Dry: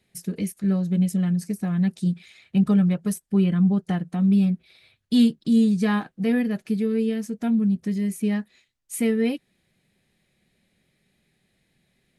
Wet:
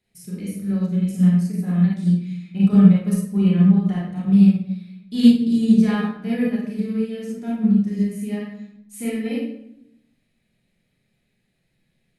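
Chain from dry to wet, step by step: reverberation RT60 0.75 s, pre-delay 29 ms, DRR -6 dB; upward expansion 1.5:1, over -19 dBFS; trim -2 dB

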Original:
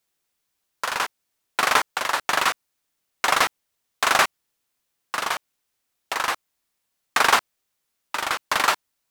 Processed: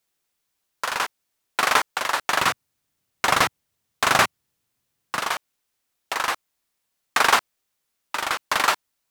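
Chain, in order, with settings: 2.41–5.19 s: peaking EQ 110 Hz +12.5 dB 2.1 oct

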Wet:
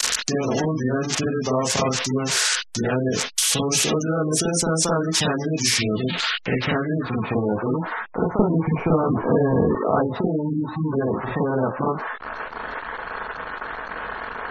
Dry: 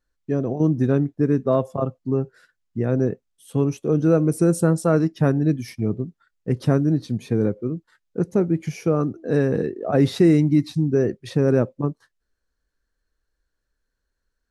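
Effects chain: zero-crossing glitches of -19.5 dBFS; compression 16:1, threshold -23 dBFS, peak gain reduction 13 dB; 6.00–6.92 s: dynamic bell 1.3 kHz, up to -3 dB, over -37 dBFS, Q 0.73; low-pass sweep 6 kHz -> 1 kHz, 5.66–7.29 s; reverberation, pre-delay 39 ms, DRR -6 dB; spectral gate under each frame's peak -30 dB strong; 8.39–9.75 s: tilt EQ -4 dB/octave; spectrum-flattening compressor 2:1; trim -7 dB

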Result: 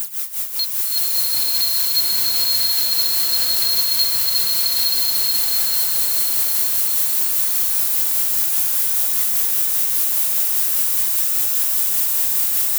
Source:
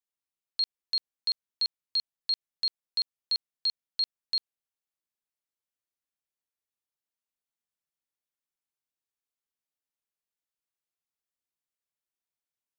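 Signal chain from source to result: zero-crossing glitches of -37 dBFS; treble shelf 6.2 kHz +9.5 dB; multi-head delay 151 ms, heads second and third, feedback 67%, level -9 dB; phaser 0.67 Hz, delay 2.8 ms, feedback 66%; peak limiter -18 dBFS, peak gain reduction 8.5 dB; waveshaping leveller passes 3; tremolo 5 Hz, depth 83%; swelling reverb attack 930 ms, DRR -6 dB; trim +2 dB

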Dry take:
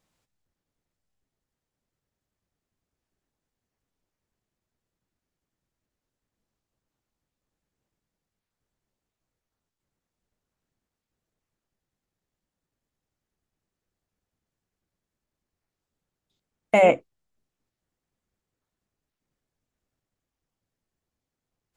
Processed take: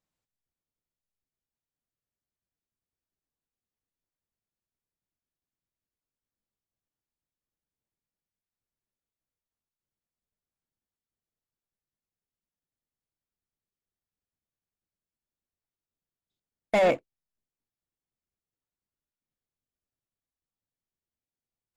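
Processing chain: waveshaping leveller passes 2; trim -9 dB

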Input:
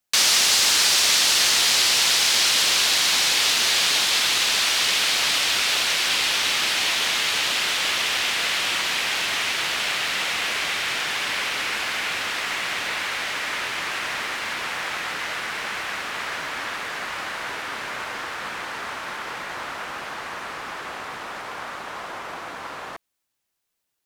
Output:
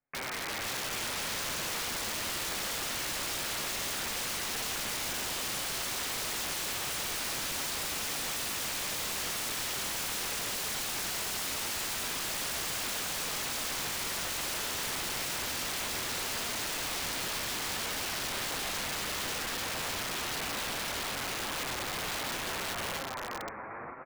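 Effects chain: de-hum 58.7 Hz, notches 8; in parallel at +3 dB: peak limiter -15 dBFS, peak gain reduction 9 dB; on the sum: feedback comb 270 Hz, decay 0.5 s, harmonics all, mix 50%; level rider gain up to 4 dB; steep low-pass 2.4 kHz 96 dB/octave; tilt shelf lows +4 dB, about 710 Hz; bouncing-ball echo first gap 520 ms, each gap 0.8×, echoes 5; flange 0.7 Hz, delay 6.8 ms, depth 2.6 ms, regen -10%; integer overflow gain 27 dB; trim -3 dB

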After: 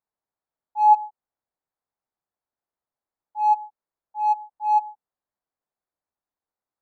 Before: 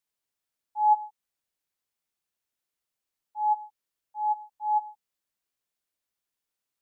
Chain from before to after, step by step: local Wiener filter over 15 samples; peaking EQ 810 Hz +6.5 dB 1.1 oct

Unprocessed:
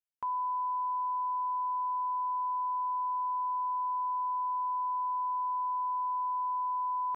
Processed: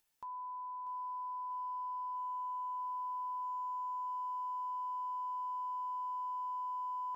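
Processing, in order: upward compressor, threshold -50 dBFS; feedback comb 880 Hz, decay 0.18 s, harmonics all, mix 80%; bit-crushed delay 640 ms, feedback 55%, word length 12-bit, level -11 dB; trim +2 dB

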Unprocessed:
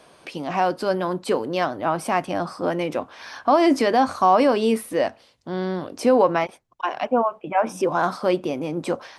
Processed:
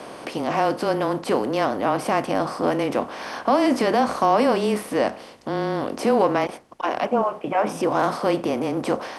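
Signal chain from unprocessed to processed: spectral levelling over time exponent 0.6; frequency shift -19 Hz; trim -4 dB

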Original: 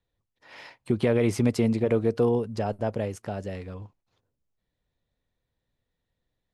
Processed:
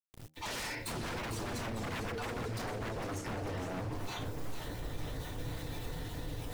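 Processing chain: random holes in the spectrogram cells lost 23%; recorder AGC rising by 74 dB/s; FDN reverb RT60 0.3 s, low-frequency decay 0.85×, high-frequency decay 0.95×, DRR -3 dB; in parallel at -4 dB: short-mantissa float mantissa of 2-bit; on the sum: wavefolder -19.5 dBFS; bit crusher 9-bit; bass shelf 390 Hz +7.5 dB; de-hum 78.26 Hz, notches 10; reverse; compression 6:1, threshold -35 dBFS, peak gain reduction 17 dB; reverse; peak limiter -35.5 dBFS, peak gain reduction 11.5 dB; modulated delay 454 ms, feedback 75%, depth 196 cents, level -9 dB; trim +3 dB

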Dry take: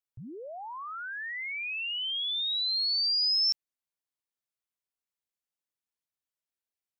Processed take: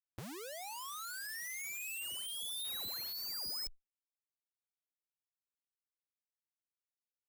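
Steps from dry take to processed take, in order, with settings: speed mistake 25 fps video run at 24 fps; Schmitt trigger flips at -46.5 dBFS; Chebyshev shaper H 5 -6 dB, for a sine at -32 dBFS; trim -4.5 dB

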